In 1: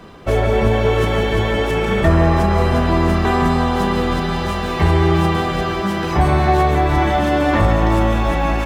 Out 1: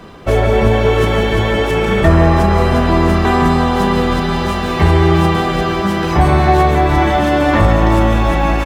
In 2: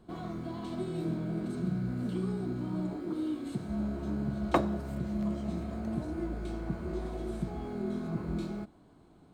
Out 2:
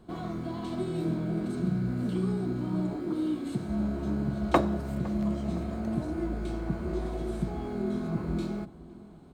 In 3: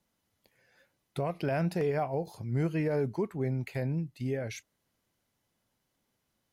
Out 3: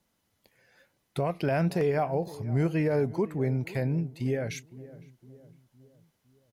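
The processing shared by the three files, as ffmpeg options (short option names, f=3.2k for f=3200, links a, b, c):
-filter_complex "[0:a]asplit=2[a][b];[b]adelay=510,lowpass=f=1k:p=1,volume=-17.5dB,asplit=2[c][d];[d]adelay=510,lowpass=f=1k:p=1,volume=0.52,asplit=2[e][f];[f]adelay=510,lowpass=f=1k:p=1,volume=0.52,asplit=2[g][h];[h]adelay=510,lowpass=f=1k:p=1,volume=0.52[i];[a][c][e][g][i]amix=inputs=5:normalize=0,volume=3.5dB"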